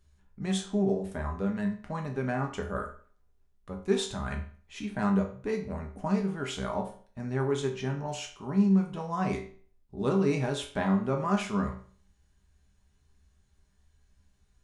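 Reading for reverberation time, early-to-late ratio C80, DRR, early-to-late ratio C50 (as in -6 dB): 0.45 s, 13.5 dB, 1.0 dB, 9.0 dB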